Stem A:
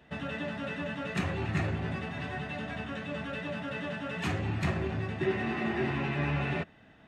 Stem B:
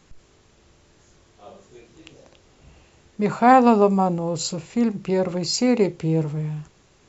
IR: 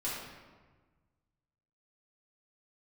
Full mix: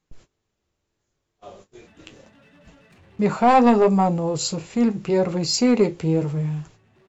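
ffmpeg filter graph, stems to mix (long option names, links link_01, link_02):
-filter_complex "[0:a]acrossover=split=430|3000[link_01][link_02][link_03];[link_02]acompressor=threshold=-38dB:ratio=6[link_04];[link_01][link_04][link_03]amix=inputs=3:normalize=0,volume=35dB,asoftclip=hard,volume=-35dB,adelay=1750,volume=-11dB[link_05];[1:a]acontrast=76,agate=range=-23dB:threshold=-41dB:ratio=16:detection=peak,volume=-1dB,asplit=2[link_06][link_07];[link_07]apad=whole_len=389094[link_08];[link_05][link_08]sidechaincompress=threshold=-28dB:ratio=4:attack=6:release=1030[link_09];[link_09][link_06]amix=inputs=2:normalize=0,flanger=delay=6.2:depth=4.7:regen=-54:speed=0.75:shape=triangular"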